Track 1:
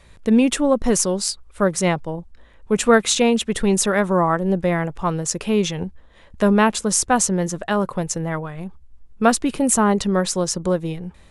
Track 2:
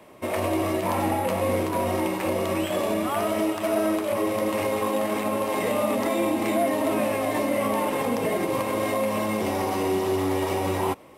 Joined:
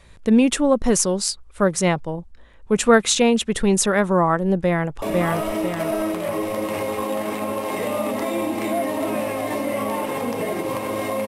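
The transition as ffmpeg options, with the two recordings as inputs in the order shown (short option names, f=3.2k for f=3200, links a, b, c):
-filter_complex "[0:a]apad=whole_dur=11.27,atrim=end=11.27,atrim=end=5.022[a];[1:a]atrim=start=2.858:end=9.11[b];[a][b]acrossfade=d=0.004:c1=hsin:c2=hsin,asplit=2[c][d];[d]afade=t=in:st=4.59:d=0.01,afade=t=out:st=5.02:d=0.01,aecho=0:1:500|1000|1500|2000|2500|3000:0.841395|0.378628|0.170383|0.0766721|0.0345025|0.0155261[e];[c][e]amix=inputs=2:normalize=0"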